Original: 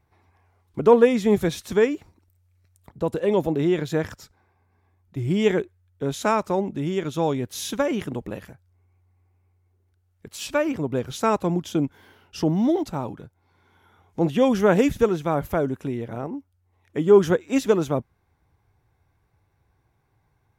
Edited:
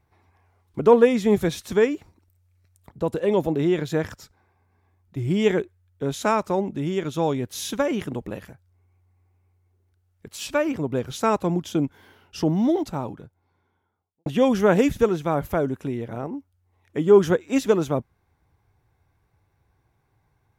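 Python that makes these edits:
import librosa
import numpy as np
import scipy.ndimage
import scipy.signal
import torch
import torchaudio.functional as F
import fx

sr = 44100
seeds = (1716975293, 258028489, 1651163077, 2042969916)

y = fx.studio_fade_out(x, sr, start_s=12.89, length_s=1.37)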